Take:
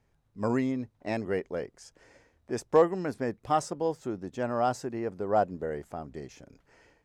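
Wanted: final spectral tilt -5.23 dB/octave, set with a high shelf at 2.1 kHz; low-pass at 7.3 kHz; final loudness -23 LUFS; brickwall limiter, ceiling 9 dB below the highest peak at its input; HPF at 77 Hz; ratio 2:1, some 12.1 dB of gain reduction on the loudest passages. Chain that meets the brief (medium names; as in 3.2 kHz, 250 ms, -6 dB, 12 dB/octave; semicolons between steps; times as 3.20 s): high-pass 77 Hz; low-pass 7.3 kHz; treble shelf 2.1 kHz -8 dB; compression 2:1, threshold -39 dBFS; trim +19 dB; peak limiter -10.5 dBFS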